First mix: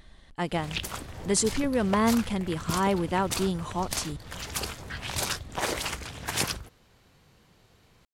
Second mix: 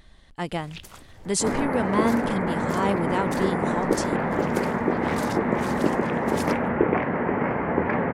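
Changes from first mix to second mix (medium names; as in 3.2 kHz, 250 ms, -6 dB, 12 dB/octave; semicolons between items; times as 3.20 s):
first sound -9.5 dB; second sound: unmuted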